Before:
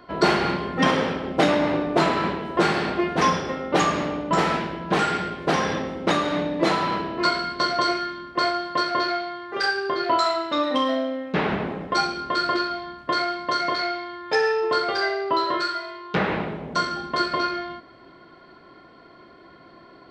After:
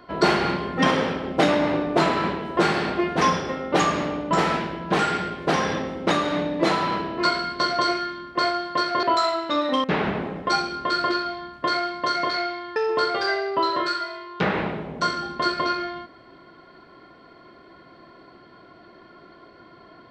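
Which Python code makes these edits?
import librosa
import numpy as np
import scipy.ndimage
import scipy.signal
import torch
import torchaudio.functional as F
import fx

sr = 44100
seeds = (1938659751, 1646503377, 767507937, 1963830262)

y = fx.edit(x, sr, fx.cut(start_s=9.03, length_s=1.02),
    fx.cut(start_s=10.86, length_s=0.43),
    fx.cut(start_s=14.21, length_s=0.29), tone=tone)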